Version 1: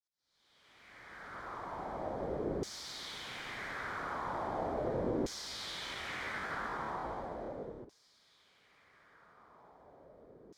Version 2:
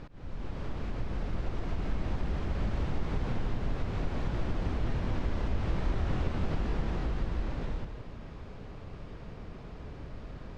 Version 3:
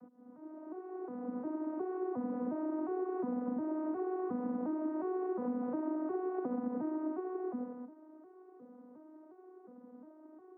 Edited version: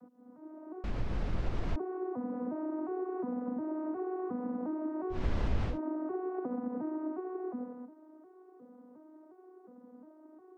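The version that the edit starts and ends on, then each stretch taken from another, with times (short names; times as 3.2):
3
0.84–1.76 from 2
5.17–5.71 from 2, crossfade 0.16 s
not used: 1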